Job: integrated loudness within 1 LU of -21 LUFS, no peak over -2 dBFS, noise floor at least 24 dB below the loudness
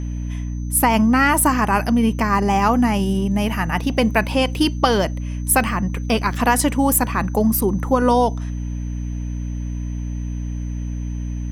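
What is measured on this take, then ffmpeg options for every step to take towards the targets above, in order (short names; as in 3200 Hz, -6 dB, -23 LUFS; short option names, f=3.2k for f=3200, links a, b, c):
hum 60 Hz; harmonics up to 300 Hz; hum level -23 dBFS; steady tone 6100 Hz; tone level -49 dBFS; loudness -19.5 LUFS; peak -1.5 dBFS; loudness target -21.0 LUFS
-> -af "bandreject=f=60:t=h:w=4,bandreject=f=120:t=h:w=4,bandreject=f=180:t=h:w=4,bandreject=f=240:t=h:w=4,bandreject=f=300:t=h:w=4"
-af "bandreject=f=6.1k:w=30"
-af "volume=-1.5dB"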